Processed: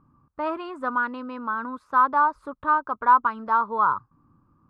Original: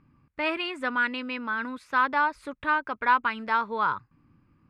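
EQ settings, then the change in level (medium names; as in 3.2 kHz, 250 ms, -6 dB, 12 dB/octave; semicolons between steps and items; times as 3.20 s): resonant high shelf 1.6 kHz -10.5 dB, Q 3; 0.0 dB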